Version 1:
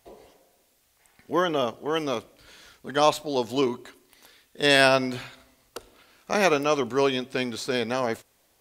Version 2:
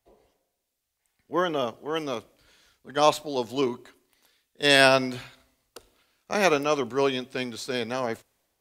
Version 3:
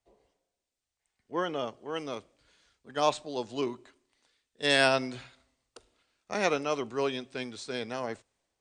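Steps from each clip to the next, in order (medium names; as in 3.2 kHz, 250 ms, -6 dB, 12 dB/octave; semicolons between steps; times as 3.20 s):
three bands expanded up and down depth 40%; trim -2 dB
brick-wall FIR low-pass 9.4 kHz; trim -6 dB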